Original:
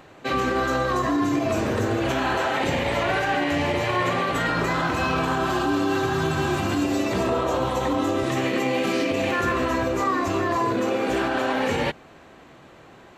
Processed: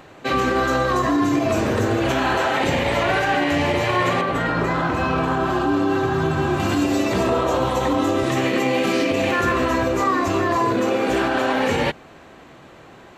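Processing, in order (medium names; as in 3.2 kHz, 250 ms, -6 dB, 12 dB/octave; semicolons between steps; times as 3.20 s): 4.21–6.60 s: treble shelf 2.6 kHz -10 dB; trim +3.5 dB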